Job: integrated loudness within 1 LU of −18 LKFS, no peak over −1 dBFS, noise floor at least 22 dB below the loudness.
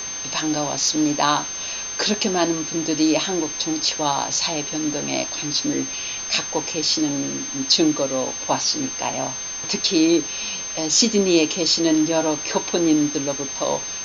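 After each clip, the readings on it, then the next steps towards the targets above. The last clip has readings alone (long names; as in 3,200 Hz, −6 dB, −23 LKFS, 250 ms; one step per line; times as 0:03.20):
interfering tone 6,300 Hz; level of the tone −28 dBFS; background noise floor −30 dBFS; target noise floor −43 dBFS; integrated loudness −20.5 LKFS; sample peak −2.5 dBFS; target loudness −18.0 LKFS
→ notch filter 6,300 Hz, Q 30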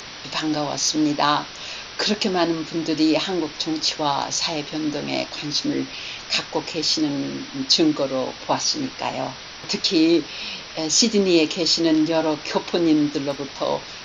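interfering tone none found; background noise floor −37 dBFS; target noise floor −44 dBFS
→ broadband denoise 7 dB, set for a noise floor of −37 dBFS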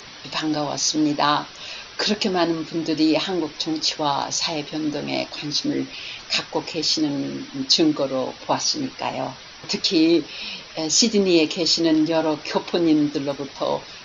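background noise floor −41 dBFS; target noise floor −44 dBFS
→ broadband denoise 6 dB, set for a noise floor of −41 dBFS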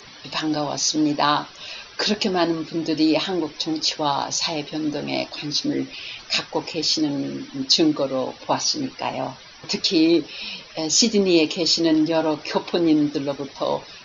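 background noise floor −44 dBFS; integrated loudness −22.0 LKFS; sample peak −2.5 dBFS; target loudness −18.0 LKFS
→ level +4 dB
brickwall limiter −1 dBFS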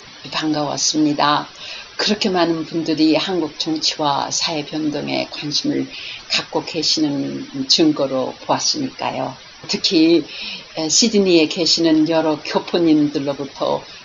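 integrated loudness −18.0 LKFS; sample peak −1.0 dBFS; background noise floor −40 dBFS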